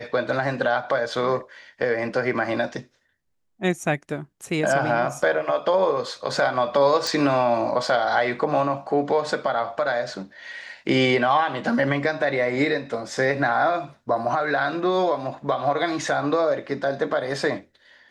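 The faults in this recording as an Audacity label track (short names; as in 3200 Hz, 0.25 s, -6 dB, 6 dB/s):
7.070000	7.070000	pop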